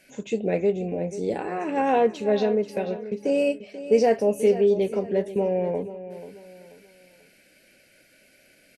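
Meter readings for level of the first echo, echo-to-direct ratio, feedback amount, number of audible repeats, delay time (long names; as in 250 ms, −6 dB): −13.5 dB, −13.0 dB, 35%, 3, 486 ms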